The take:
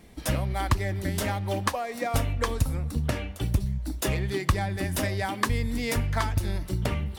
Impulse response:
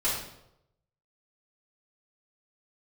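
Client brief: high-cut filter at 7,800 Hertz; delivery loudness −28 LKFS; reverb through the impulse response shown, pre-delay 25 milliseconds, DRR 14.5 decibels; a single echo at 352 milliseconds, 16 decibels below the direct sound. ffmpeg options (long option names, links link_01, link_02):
-filter_complex "[0:a]lowpass=7800,aecho=1:1:352:0.158,asplit=2[link_01][link_02];[1:a]atrim=start_sample=2205,adelay=25[link_03];[link_02][link_03]afir=irnorm=-1:irlink=0,volume=-24dB[link_04];[link_01][link_04]amix=inputs=2:normalize=0,volume=0.5dB"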